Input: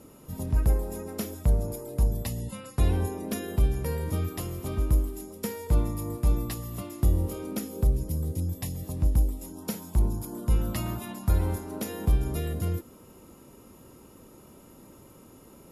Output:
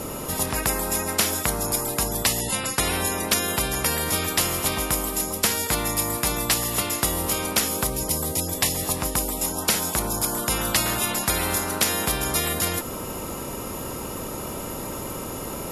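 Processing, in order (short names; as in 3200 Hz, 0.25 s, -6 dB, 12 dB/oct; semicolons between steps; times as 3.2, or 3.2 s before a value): spectral compressor 4:1; gain +8.5 dB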